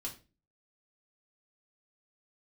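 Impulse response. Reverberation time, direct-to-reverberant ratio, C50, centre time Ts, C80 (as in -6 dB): 0.30 s, -2.0 dB, 11.5 dB, 14 ms, 17.5 dB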